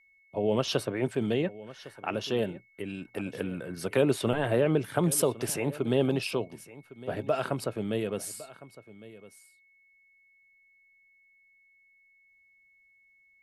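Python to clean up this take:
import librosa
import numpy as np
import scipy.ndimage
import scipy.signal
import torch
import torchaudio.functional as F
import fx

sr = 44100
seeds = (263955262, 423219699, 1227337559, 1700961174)

y = fx.notch(x, sr, hz=2200.0, q=30.0)
y = fx.fix_echo_inverse(y, sr, delay_ms=1107, level_db=-18.0)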